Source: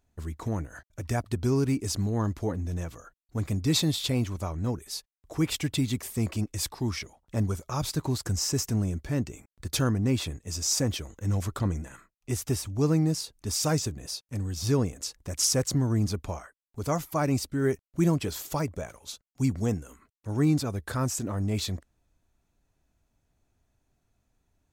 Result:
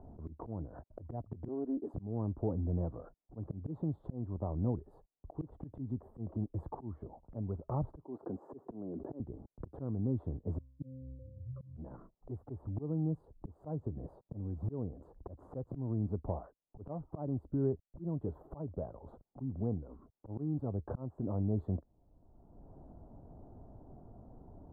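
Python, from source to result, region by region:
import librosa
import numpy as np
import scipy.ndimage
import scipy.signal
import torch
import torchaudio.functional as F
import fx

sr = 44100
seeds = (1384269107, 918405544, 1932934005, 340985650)

y = fx.chain(x, sr, fx.steep_highpass(hz=240.0, slope=36),
    fx.doppler_dist(depth_ms=0.17), at=(1.48, 1.94))
y = fx.chain(y, sr, fx.ladder_highpass(hz=230.0, resonance_pct=25),
    fx.sustainer(db_per_s=24.0), at=(8.04, 9.2))
y = fx.chain(y, sr, fx.spec_expand(power=3.0),
    fx.octave_resonator(note='C', decay_s=0.62), at=(10.58, 11.77))
y = scipy.signal.sosfilt(scipy.signal.cheby2(4, 50, 2200.0, 'lowpass', fs=sr, output='sos'), y)
y = fx.auto_swell(y, sr, attack_ms=745.0)
y = fx.band_squash(y, sr, depth_pct=70)
y = y * 10.0 ** (2.5 / 20.0)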